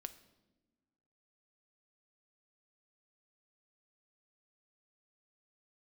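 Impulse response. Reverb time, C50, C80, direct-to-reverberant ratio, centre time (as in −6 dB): non-exponential decay, 14.5 dB, 17.0 dB, 10.5 dB, 6 ms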